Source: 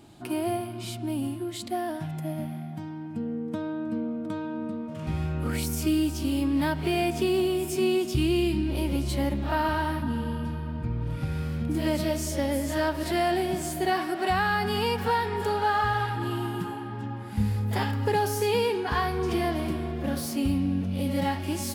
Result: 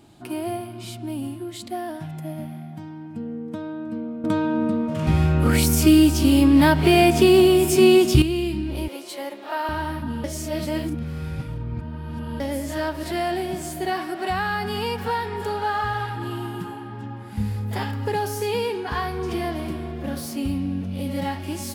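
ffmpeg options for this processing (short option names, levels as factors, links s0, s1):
-filter_complex "[0:a]asettb=1/sr,asplit=3[s0][s1][s2];[s0]atrim=end=8.884[s3];[s1]atrim=start=8.88:end=9.69,asetpts=PTS-STARTPTS,afade=t=in:d=0.004:c=qsin,afade=t=out:st=0.806:d=0.004:c=qsin,highpass=f=370:w=0.5412,highpass=f=370:w=1.3066[s4];[s2]atrim=start=9.686[s5];[s3][s4]acrossfade=d=0.004:c1=hsin:c2=qsin[s6];[s6][s5]acrossfade=d=0.004:c1=qsin:c2=hsin,asplit=5[s7][s8][s9][s10][s11];[s7]atrim=end=4.242[s12];[s8]atrim=start=4.238:end=8.222,asetpts=PTS-STARTPTS,volume=3.35[s13];[s9]atrim=start=8.218:end=10.242[s14];[s10]atrim=start=10.238:end=12.402,asetpts=PTS-STARTPTS,areverse[s15];[s11]atrim=start=12.398[s16];[s12][s13]acrossfade=d=0.004:c1=hsin:c2=hsin[s17];[s17][s14]acrossfade=d=0.004:c1=hsin:c2=hsin[s18];[s18][s15]acrossfade=d=0.004:c1=hsin:c2=hsin[s19];[s19][s16]acrossfade=d=0.004:c1=hsin:c2=hsin"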